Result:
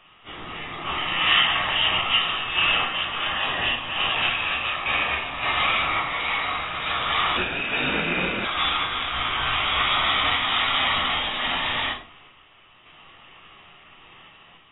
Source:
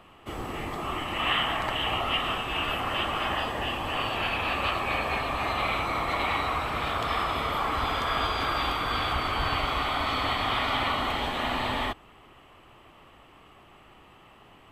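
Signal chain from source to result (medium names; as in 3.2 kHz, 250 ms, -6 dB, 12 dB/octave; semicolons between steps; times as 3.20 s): tilt shelf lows -9.5 dB, about 1.5 kHz; random-step tremolo; on a send at -1 dB: reverberation RT60 0.40 s, pre-delay 10 ms; 7.37–8.45 s: on the sum: frequency inversion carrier 3.7 kHz; trim +4 dB; AAC 16 kbps 16 kHz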